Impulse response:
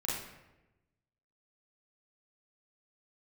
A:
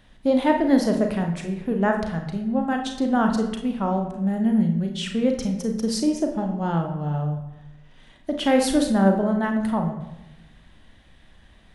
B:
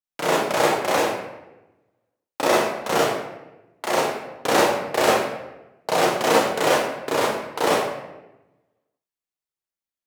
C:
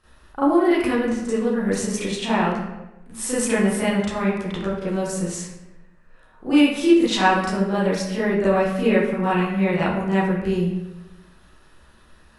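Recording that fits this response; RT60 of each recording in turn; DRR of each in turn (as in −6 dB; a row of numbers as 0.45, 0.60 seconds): B; 1.0, 1.0, 1.0 seconds; 3.5, −6.5, −12.0 decibels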